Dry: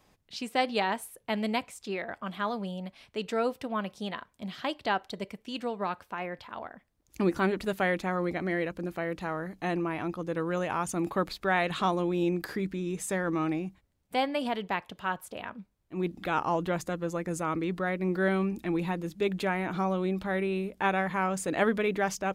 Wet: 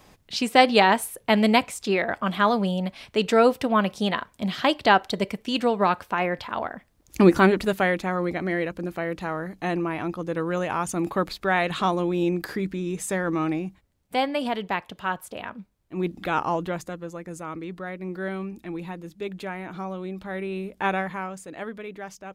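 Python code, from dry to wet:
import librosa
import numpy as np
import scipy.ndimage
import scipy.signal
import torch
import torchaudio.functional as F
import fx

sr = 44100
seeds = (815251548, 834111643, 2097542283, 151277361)

y = fx.gain(x, sr, db=fx.line((7.32, 11.0), (7.96, 4.0), (16.42, 4.0), (17.13, -4.0), (20.13, -4.0), (20.93, 3.0), (21.47, -9.0)))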